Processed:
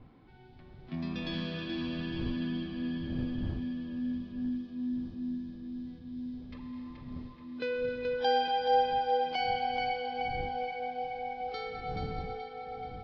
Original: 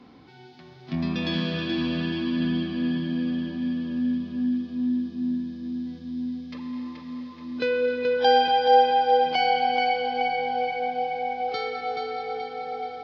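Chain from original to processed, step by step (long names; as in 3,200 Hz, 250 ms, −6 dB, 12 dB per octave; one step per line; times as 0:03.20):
wind on the microphone 140 Hz −37 dBFS
low-pass that shuts in the quiet parts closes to 2,600 Hz, open at −19 dBFS
level −9 dB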